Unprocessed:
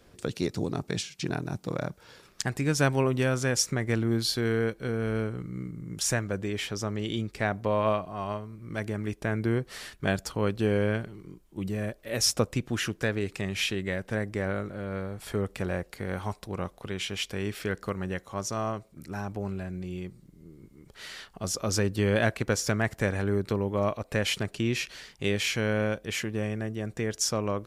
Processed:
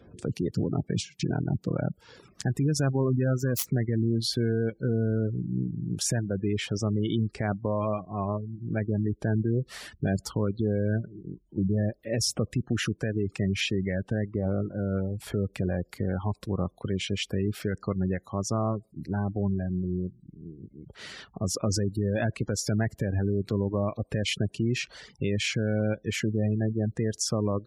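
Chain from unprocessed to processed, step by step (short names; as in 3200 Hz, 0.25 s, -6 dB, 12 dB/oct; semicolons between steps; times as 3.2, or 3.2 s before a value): 3.03–3.93 self-modulated delay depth 0.16 ms; reverb removal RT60 0.5 s; HPF 75 Hz 12 dB/oct; low shelf 410 Hz +10.5 dB; limiter -17.5 dBFS, peak gain reduction 10.5 dB; spectral gate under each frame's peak -25 dB strong; 14.25–14.65 polynomial smoothing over 65 samples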